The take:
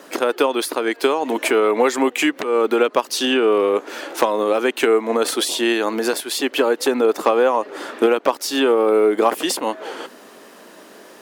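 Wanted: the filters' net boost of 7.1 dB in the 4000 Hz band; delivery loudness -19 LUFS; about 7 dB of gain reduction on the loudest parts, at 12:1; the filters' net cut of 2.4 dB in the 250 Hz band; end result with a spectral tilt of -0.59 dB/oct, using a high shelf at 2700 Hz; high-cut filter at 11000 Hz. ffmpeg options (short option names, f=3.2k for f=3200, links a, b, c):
-af "lowpass=11k,equalizer=f=250:t=o:g=-3.5,highshelf=f=2.7k:g=4.5,equalizer=f=4k:t=o:g=5.5,acompressor=threshold=-18dB:ratio=12,volume=3.5dB"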